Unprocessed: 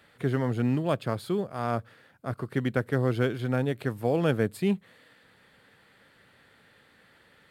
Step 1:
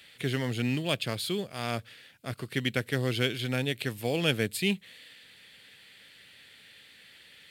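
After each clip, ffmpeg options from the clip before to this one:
-af "highshelf=f=1.8k:t=q:w=1.5:g=13,volume=-3.5dB"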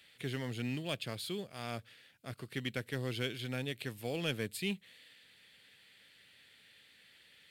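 -af "asoftclip=type=tanh:threshold=-13.5dB,volume=-8dB"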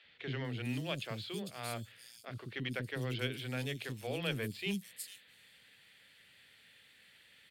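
-filter_complex "[0:a]acrossover=split=340|4500[a][b][c];[a]adelay=40[d];[c]adelay=450[e];[d][b][e]amix=inputs=3:normalize=0,volume=1dB"

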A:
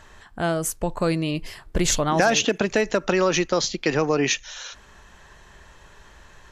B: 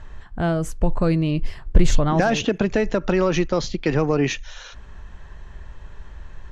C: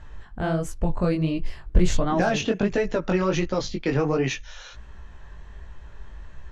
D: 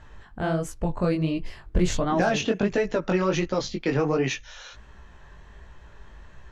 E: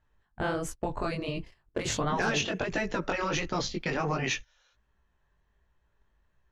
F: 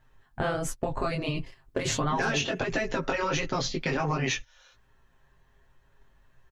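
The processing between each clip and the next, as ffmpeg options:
-af "acontrast=78,aemphasis=mode=reproduction:type=bsi,volume=-7.5dB"
-af "flanger=delay=15.5:depth=7:speed=1.4"
-af "lowshelf=f=78:g=-8.5"
-af "afftfilt=real='re*lt(hypot(re,im),0.355)':imag='im*lt(hypot(re,im),0.355)':win_size=1024:overlap=0.75,agate=range=-24dB:threshold=-36dB:ratio=16:detection=peak"
-af "aecho=1:1:7.5:0.56,acompressor=threshold=-40dB:ratio=2,volume=8.5dB"

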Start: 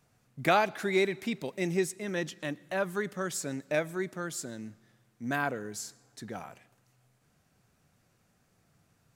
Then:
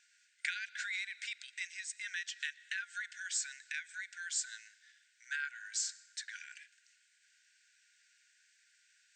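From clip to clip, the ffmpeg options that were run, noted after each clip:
-af "acompressor=threshold=-37dB:ratio=6,afftfilt=real='re*between(b*sr/4096,1400,8700)':imag='im*between(b*sr/4096,1400,8700)':win_size=4096:overlap=0.75,volume=7dB"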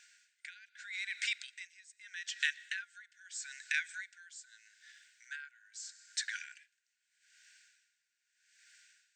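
-af "aeval=exprs='val(0)*pow(10,-23*(0.5-0.5*cos(2*PI*0.8*n/s))/20)':c=same,volume=7.5dB"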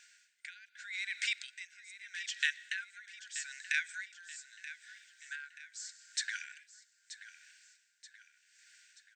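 -af "aecho=1:1:930|1860|2790|3720:0.2|0.0938|0.0441|0.0207,volume=1dB"

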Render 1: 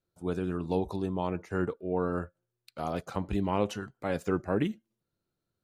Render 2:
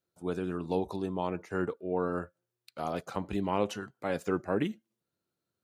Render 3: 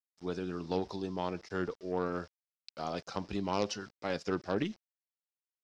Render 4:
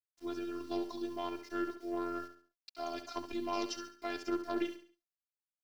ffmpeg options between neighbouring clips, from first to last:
-af "highpass=f=180:p=1"
-af "aeval=exprs='0.2*(cos(1*acos(clip(val(0)/0.2,-1,1)))-cos(1*PI/2))+0.02*(cos(6*acos(clip(val(0)/0.2,-1,1)))-cos(6*PI/2))+0.0158*(cos(8*acos(clip(val(0)/0.2,-1,1)))-cos(8*PI/2))':c=same,aeval=exprs='val(0)*gte(abs(val(0)),0.00237)':c=same,lowpass=f=5.2k:t=q:w=5.3,volume=-3.5dB"
-filter_complex "[0:a]afftfilt=real='hypot(re,im)*cos(PI*b)':imag='0':win_size=512:overlap=0.75,acrusher=bits=10:mix=0:aa=0.000001,asplit=2[a][b];[b]aecho=0:1:69|138|207|276:0.316|0.114|0.041|0.0148[c];[a][c]amix=inputs=2:normalize=0,volume=1dB"

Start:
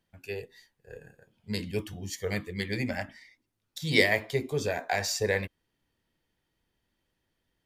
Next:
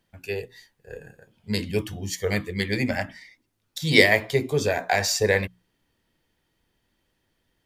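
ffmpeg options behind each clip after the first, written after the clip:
-af "bandreject=f=60:t=h:w=6,bandreject=f=120:t=h:w=6,bandreject=f=180:t=h:w=6,volume=6.5dB"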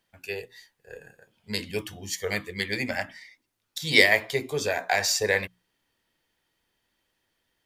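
-af "lowshelf=f=400:g=-10.5"

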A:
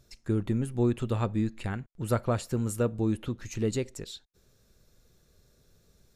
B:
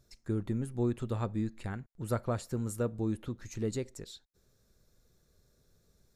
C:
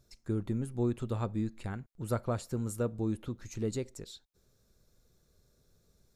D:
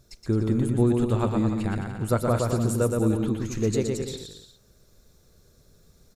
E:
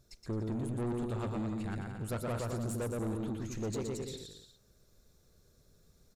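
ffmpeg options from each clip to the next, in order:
-af "equalizer=f=2.8k:w=2.7:g=-5.5,volume=-5dB"
-af "equalizer=f=1.8k:t=o:w=0.31:g=-3.5"
-af "aecho=1:1:120|216|292.8|354.2|403.4:0.631|0.398|0.251|0.158|0.1,volume=8.5dB"
-af "asoftclip=type=tanh:threshold=-24dB,volume=-7.5dB"

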